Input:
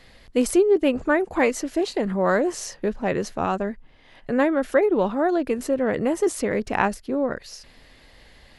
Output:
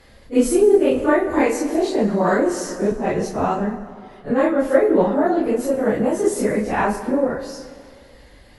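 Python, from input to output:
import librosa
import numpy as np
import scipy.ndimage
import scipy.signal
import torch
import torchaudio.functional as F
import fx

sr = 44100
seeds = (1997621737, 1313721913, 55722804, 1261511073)

y = fx.phase_scramble(x, sr, seeds[0], window_ms=100)
y = fx.peak_eq(y, sr, hz=3000.0, db=-6.0, octaves=2.0)
y = fx.cheby_harmonics(y, sr, harmonics=(6,), levels_db=(-38,), full_scale_db=-5.5)
y = fx.rev_plate(y, sr, seeds[1], rt60_s=2.1, hf_ratio=0.65, predelay_ms=0, drr_db=9.0)
y = fx.band_squash(y, sr, depth_pct=40, at=(0.91, 2.92))
y = y * librosa.db_to_amplitude(4.0)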